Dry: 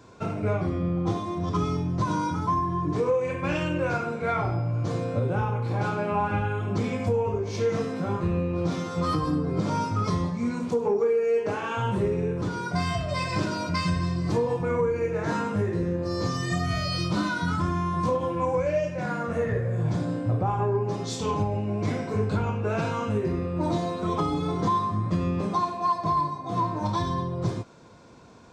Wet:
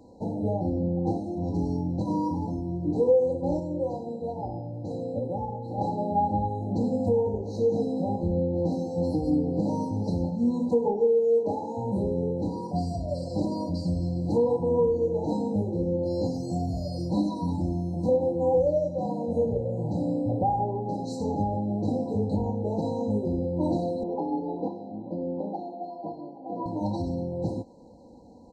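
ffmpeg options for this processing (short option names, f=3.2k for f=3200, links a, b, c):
-filter_complex "[0:a]asettb=1/sr,asplit=3[a][b][c];[a]atrim=end=24.034[d];[b]atrim=start=24.03:end=26.66,asetpts=PTS-STARTPTS,afade=t=in:d=0.004:c=qsin,afade=t=out:st=2.626:d=0.004:c=qsin,highpass=300,lowpass=2.1k[e];[c]atrim=start=26.656[f];[d][e]acrossfade=d=0.004:c1=hsin:c2=qsin[g];[g][f]acrossfade=d=0.004:c1=qsin:c2=hsin,asplit=3[h][i][j];[h]atrim=end=3.602[k];[i]atrim=start=3.598:end=5.782,asetpts=PTS-STARTPTS,volume=-4.5dB[l];[j]atrim=start=5.778[m];[k][l]acrossfade=d=0.004:c1=hsin:c2=hsin[n];[n][m]acrossfade=d=0.004:c1=hsin:c2=hsin,highshelf=f=3.9k:t=q:w=3:g=-8,afftfilt=real='re*(1-between(b*sr/4096,990,3900))':imag='im*(1-between(b*sr/4096,990,3900))':win_size=4096:overlap=0.75,aecho=1:1:3.8:0.62"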